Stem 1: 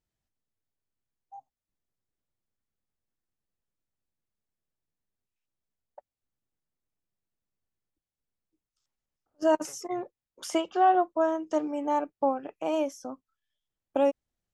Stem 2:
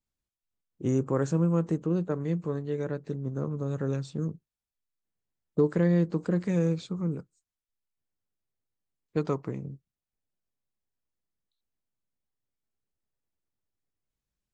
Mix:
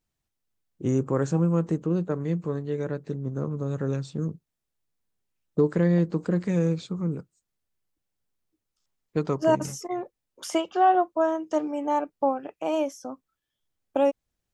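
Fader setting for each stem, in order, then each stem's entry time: +2.0 dB, +2.0 dB; 0.00 s, 0.00 s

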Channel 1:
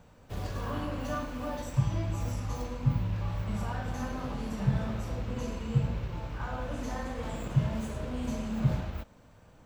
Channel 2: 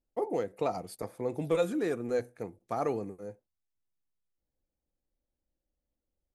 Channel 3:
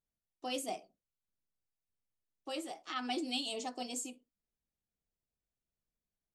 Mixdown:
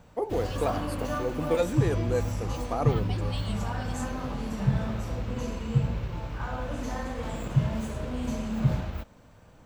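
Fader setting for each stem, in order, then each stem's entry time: +2.5 dB, +2.0 dB, -4.5 dB; 0.00 s, 0.00 s, 0.00 s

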